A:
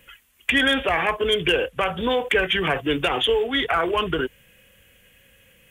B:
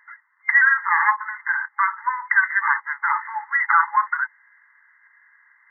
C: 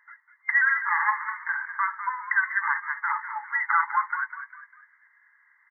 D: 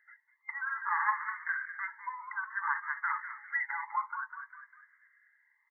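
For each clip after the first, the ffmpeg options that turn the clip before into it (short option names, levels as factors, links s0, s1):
-af "afftfilt=real='re*between(b*sr/4096,830,2100)':imag='im*between(b*sr/4096,830,2100)':win_size=4096:overlap=0.75,volume=2.37"
-filter_complex "[0:a]asplit=5[s0][s1][s2][s3][s4];[s1]adelay=200,afreqshift=43,volume=0.299[s5];[s2]adelay=400,afreqshift=86,volume=0.123[s6];[s3]adelay=600,afreqshift=129,volume=0.0501[s7];[s4]adelay=800,afreqshift=172,volume=0.0207[s8];[s0][s5][s6][s7][s8]amix=inputs=5:normalize=0,volume=0.501"
-filter_complex "[0:a]asplit=2[s0][s1];[s1]afreqshift=0.57[s2];[s0][s2]amix=inputs=2:normalize=1,volume=0.596"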